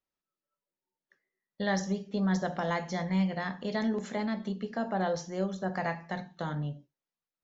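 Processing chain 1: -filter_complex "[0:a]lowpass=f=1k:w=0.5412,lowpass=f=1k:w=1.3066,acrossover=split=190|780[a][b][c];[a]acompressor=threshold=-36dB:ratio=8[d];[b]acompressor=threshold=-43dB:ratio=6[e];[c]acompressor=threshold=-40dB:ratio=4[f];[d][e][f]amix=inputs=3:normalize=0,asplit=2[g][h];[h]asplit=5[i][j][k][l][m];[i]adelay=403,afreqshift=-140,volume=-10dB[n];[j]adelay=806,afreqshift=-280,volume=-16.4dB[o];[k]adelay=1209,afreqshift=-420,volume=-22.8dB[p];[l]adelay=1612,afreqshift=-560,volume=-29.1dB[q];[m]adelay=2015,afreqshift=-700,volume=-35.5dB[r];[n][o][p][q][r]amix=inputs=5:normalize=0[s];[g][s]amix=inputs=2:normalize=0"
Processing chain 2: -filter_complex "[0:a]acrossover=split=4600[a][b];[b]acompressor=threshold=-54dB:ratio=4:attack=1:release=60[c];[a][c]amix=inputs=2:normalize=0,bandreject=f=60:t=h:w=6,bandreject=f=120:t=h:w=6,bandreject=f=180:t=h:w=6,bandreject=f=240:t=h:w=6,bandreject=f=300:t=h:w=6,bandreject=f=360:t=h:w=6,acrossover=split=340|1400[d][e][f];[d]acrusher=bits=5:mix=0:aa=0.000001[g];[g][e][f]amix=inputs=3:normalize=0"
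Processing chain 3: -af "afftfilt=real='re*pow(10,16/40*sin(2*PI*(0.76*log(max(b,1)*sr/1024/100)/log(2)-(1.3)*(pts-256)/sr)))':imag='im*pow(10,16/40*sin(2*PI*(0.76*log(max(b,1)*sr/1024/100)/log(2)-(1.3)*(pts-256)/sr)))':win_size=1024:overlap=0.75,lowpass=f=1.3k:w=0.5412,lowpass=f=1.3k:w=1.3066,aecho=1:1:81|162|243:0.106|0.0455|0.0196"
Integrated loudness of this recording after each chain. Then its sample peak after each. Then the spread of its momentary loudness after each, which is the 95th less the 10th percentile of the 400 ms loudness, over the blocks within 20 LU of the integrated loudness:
-38.5, -32.5, -31.0 LUFS; -25.5, -17.5, -16.5 dBFS; 5, 6, 9 LU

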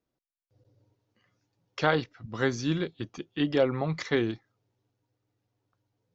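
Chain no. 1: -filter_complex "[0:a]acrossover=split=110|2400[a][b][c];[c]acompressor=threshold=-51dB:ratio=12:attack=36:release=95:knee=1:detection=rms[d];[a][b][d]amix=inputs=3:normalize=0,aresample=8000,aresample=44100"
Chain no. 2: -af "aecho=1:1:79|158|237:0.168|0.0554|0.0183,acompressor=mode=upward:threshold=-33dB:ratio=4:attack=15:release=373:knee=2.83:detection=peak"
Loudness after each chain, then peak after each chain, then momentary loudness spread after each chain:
-29.5, -29.0 LUFS; -11.5, -9.5 dBFS; 14, 22 LU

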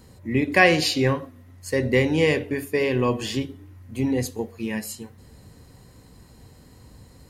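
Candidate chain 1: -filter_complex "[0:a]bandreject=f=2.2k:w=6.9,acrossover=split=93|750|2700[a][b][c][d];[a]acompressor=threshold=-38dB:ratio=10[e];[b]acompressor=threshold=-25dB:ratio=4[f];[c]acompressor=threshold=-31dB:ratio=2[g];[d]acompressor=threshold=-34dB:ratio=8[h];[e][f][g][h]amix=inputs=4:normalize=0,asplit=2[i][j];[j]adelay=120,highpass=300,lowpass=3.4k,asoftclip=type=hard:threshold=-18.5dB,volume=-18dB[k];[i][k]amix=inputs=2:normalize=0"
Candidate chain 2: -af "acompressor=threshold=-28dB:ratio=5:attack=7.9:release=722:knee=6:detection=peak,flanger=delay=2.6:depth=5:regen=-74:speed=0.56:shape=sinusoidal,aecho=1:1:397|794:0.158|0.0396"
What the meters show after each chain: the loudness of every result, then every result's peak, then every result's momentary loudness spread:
-28.0, -38.5 LUFS; -10.0, -21.5 dBFS; 15, 18 LU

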